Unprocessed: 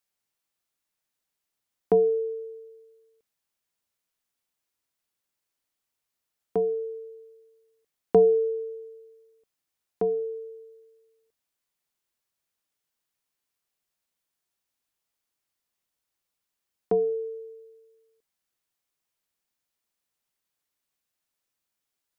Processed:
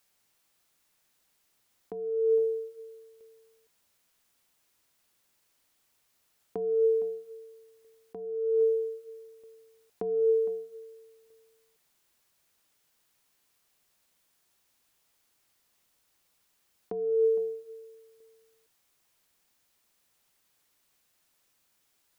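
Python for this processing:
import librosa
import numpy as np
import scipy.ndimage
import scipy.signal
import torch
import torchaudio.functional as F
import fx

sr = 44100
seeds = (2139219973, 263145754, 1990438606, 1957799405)

p1 = fx.over_compress(x, sr, threshold_db=-33.0, ratio=-1.0)
p2 = p1 + fx.echo_single(p1, sr, ms=461, db=-14.0, dry=0)
y = p2 * librosa.db_to_amplitude(5.0)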